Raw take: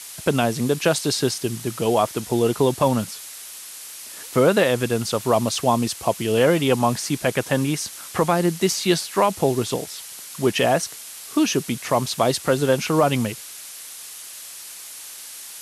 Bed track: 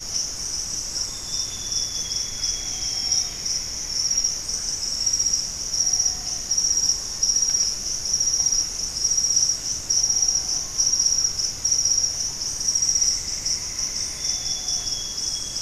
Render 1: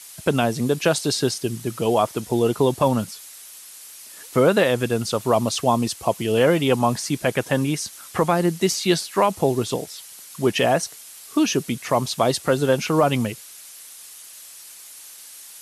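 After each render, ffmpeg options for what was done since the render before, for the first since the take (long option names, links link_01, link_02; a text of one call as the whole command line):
ffmpeg -i in.wav -af "afftdn=noise_reduction=6:noise_floor=-38" out.wav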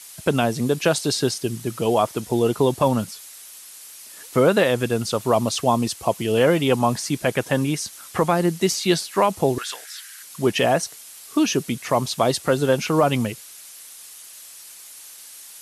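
ffmpeg -i in.wav -filter_complex "[0:a]asettb=1/sr,asplit=3[link_01][link_02][link_03];[link_01]atrim=end=9.584[link_04];[link_02]atrim=start=9.58:end=10.23,asetpts=PTS-STARTPTS,afade=type=in:duration=0.004:curve=qsin,afade=type=out:start_time=0.646:duration=0.004:curve=qsin,highpass=frequency=1600:width_type=q:width=5.8[link_05];[link_03]atrim=start=10.226[link_06];[link_04][link_05]acrossfade=duration=0.004:curve1=hsin:curve2=qsin[link_07];[link_07][link_06]acrossfade=duration=0.004:curve1=qsin:curve2=hsin" out.wav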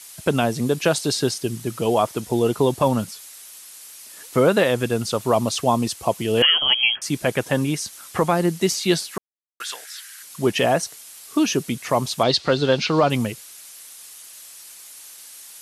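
ffmpeg -i in.wav -filter_complex "[0:a]asettb=1/sr,asplit=3[link_01][link_02][link_03];[link_01]atrim=end=6.424[link_04];[link_02]atrim=start=6.42:end=7.02,asetpts=PTS-STARTPTS,afade=type=in:duration=0.004:curve=qsin,afade=type=out:start_time=0.596:duration=0.004:curve=qsin,lowpass=frequency=2900:width_type=q:width=0.5098,lowpass=frequency=2900:width_type=q:width=0.6013,lowpass=frequency=2900:width_type=q:width=0.9,lowpass=frequency=2900:width_type=q:width=2.563,afreqshift=-3400[link_05];[link_03]atrim=start=7.016[link_06];[link_04][link_05]acrossfade=duration=0.004:curve1=hsin:curve2=qsin[link_07];[link_07][link_06]acrossfade=duration=0.004:curve1=qsin:curve2=hsin,asettb=1/sr,asplit=3[link_08][link_09][link_10];[link_08]atrim=end=12.234[link_11];[link_09]atrim=start=12.23:end=13.1,asetpts=PTS-STARTPTS,afade=type=in:duration=0.004:curve=qsin,afade=type=out:start_time=0.866:duration=0.004:curve=qsin,lowpass=frequency=4300:width_type=q:width=3.4[link_12];[link_10]atrim=start=13.096[link_13];[link_11][link_12]acrossfade=duration=0.004:curve1=hsin:curve2=qsin[link_14];[link_14][link_13]acrossfade=duration=0.004:curve1=qsin:curve2=hsin,asplit=3[link_15][link_16][link_17];[link_15]atrim=end=9.18,asetpts=PTS-STARTPTS,afade=type=out:start_time=9.176:duration=0.004:curve=hsin[link_18];[link_16]atrim=start=9.18:end=9.6,asetpts=PTS-STARTPTS,volume=0[link_19];[link_17]atrim=start=9.6,asetpts=PTS-STARTPTS,afade=type=in:duration=0.004:curve=hsin[link_20];[link_18][link_19][link_20]concat=n=3:v=0:a=1" out.wav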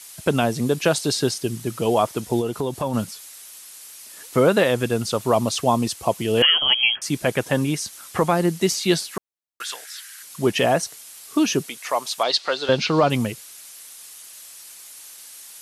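ffmpeg -i in.wav -filter_complex "[0:a]asplit=3[link_01][link_02][link_03];[link_01]afade=type=out:start_time=2.4:duration=0.02[link_04];[link_02]acompressor=threshold=-25dB:ratio=2:attack=3.2:release=140:knee=1:detection=peak,afade=type=in:start_time=2.4:duration=0.02,afade=type=out:start_time=2.93:duration=0.02[link_05];[link_03]afade=type=in:start_time=2.93:duration=0.02[link_06];[link_04][link_05][link_06]amix=inputs=3:normalize=0,asettb=1/sr,asplit=3[link_07][link_08][link_09];[link_07]atrim=end=11.664[link_10];[link_08]atrim=start=11.66:end=12.69,asetpts=PTS-STARTPTS,afade=type=in:duration=0.004:curve=qsin,afade=type=out:start_time=1.026:duration=0.004:curve=qsin,highpass=630[link_11];[link_09]atrim=start=12.686[link_12];[link_10][link_11]acrossfade=duration=0.004:curve1=hsin:curve2=qsin[link_13];[link_13][link_12]acrossfade=duration=0.004:curve1=qsin:curve2=hsin" out.wav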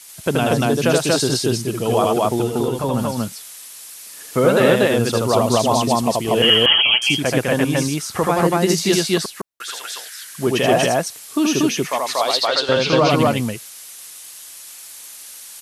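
ffmpeg -i in.wav -af "aecho=1:1:78.72|236.2:0.794|1" out.wav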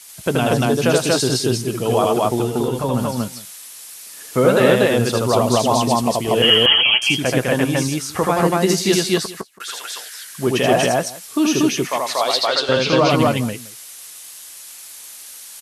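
ffmpeg -i in.wav -filter_complex "[0:a]asplit=2[link_01][link_02];[link_02]adelay=16,volume=-14dB[link_03];[link_01][link_03]amix=inputs=2:normalize=0,aecho=1:1:171:0.112" out.wav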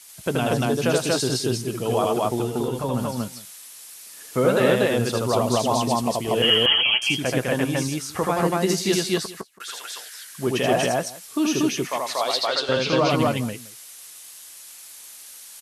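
ffmpeg -i in.wav -af "volume=-5dB" out.wav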